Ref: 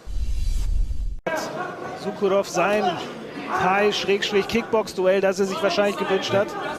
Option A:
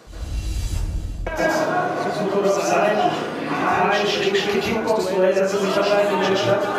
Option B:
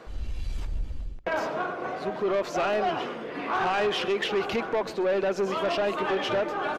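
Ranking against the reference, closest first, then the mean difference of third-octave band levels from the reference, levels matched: B, A; 3.5 dB, 5.5 dB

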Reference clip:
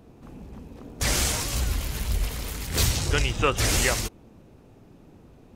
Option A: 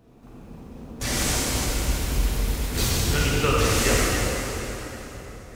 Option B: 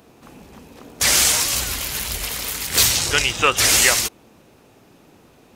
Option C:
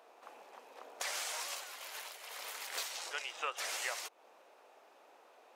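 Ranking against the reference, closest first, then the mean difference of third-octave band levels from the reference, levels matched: B, A, C; 4.5 dB, 8.0 dB, 12.5 dB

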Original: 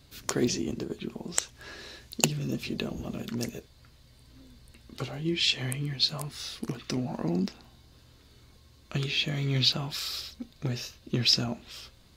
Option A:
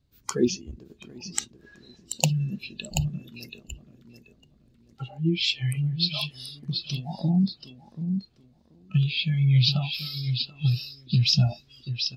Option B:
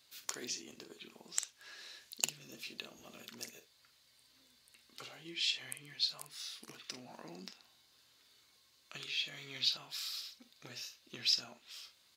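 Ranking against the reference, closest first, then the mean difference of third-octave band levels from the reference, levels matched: B, A; 7.0 dB, 13.0 dB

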